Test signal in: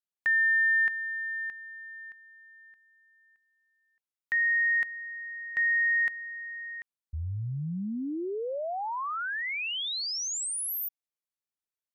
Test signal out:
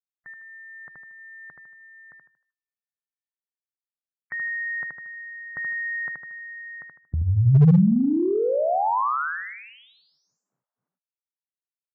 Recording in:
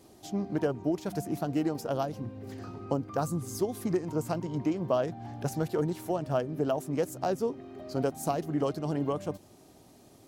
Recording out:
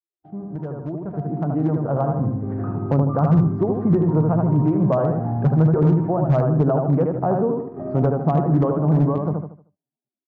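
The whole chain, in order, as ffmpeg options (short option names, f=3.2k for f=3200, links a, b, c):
-af "lowshelf=f=370:g=-6,agate=range=-45dB:threshold=-49dB:ratio=16:release=50:detection=peak,aecho=1:1:77|154|231|308|385:0.596|0.214|0.0772|0.0278|0.01,acompressor=threshold=-38dB:ratio=1.5:attack=0.32:release=32:knee=1:detection=rms,lowpass=f=1.3k:w=0.5412,lowpass=f=1.3k:w=1.3066,equalizer=f=150:t=o:w=0.91:g=13.5,asoftclip=type=hard:threshold=-23.5dB,dynaudnorm=f=230:g=13:m=13.5dB" -ar 16000 -c:a libvorbis -b:a 48k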